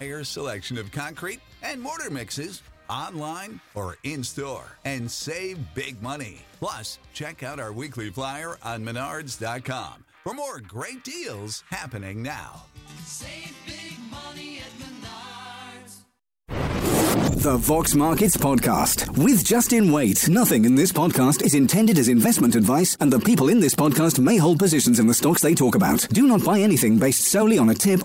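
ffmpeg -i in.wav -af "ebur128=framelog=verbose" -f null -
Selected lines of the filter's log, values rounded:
Integrated loudness:
  I:         -19.6 LUFS
  Threshold: -32.0 LUFS
Loudness range:
  LRA:        17.3 LU
  Threshold: -42.1 LUFS
  LRA low:   -35.1 LUFS
  LRA high:  -17.9 LUFS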